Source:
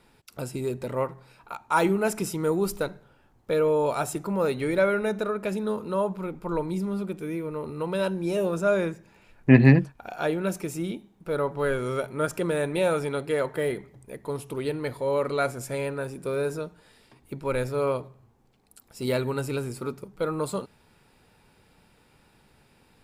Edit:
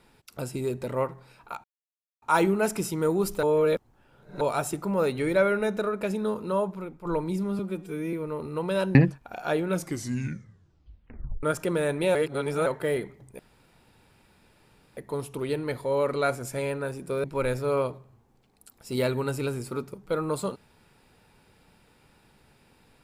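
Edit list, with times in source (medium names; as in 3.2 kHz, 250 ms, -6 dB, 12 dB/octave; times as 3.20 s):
1.64 s: insert silence 0.58 s
2.85–3.83 s: reverse
5.97–6.47 s: fade out, to -9 dB
7.01–7.37 s: stretch 1.5×
8.19–9.69 s: delete
10.42 s: tape stop 1.75 s
12.89–13.40 s: reverse
14.13 s: insert room tone 1.58 s
16.40–17.34 s: delete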